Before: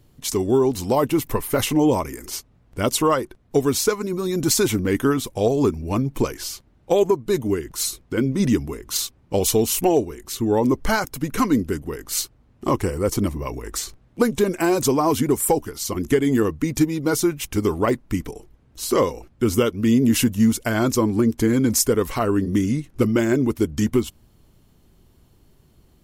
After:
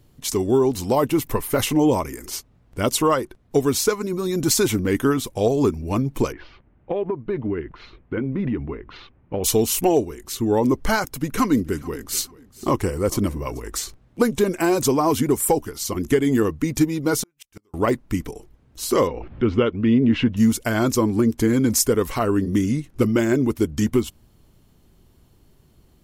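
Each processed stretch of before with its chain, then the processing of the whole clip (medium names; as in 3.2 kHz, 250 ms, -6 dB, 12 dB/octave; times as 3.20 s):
6.32–9.44 s: inverse Chebyshev low-pass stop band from 7.9 kHz, stop band 60 dB + compression, threshold -20 dBFS
11.10–13.60 s: short-mantissa float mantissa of 8-bit + feedback delay 436 ms, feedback 25%, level -21 dB
17.23–17.74 s: bass shelf 400 Hz -8 dB + inverted gate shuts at -19 dBFS, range -40 dB
19.07–20.37 s: low-pass 3.2 kHz 24 dB/octave + upward compressor, threshold -22 dBFS
whole clip: none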